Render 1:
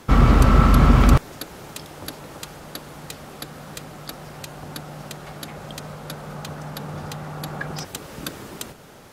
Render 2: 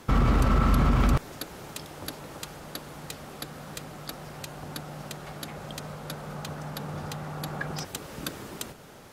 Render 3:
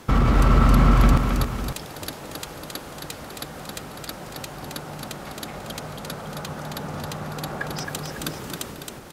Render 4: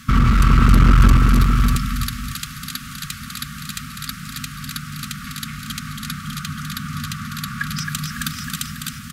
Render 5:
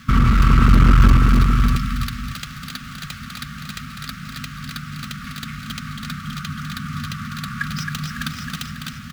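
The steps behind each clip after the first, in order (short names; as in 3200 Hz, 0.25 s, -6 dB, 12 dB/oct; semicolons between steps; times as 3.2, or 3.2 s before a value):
limiter -10.5 dBFS, peak gain reduction 8 dB; gain -3 dB
tapped delay 0.269/0.492/0.551 s -4.5/-18/-11 dB; gain +3.5 dB
echo 0.6 s -6 dB; FFT band-reject 260–1100 Hz; one-sided clip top -18 dBFS; gain +5.5 dB
median filter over 5 samples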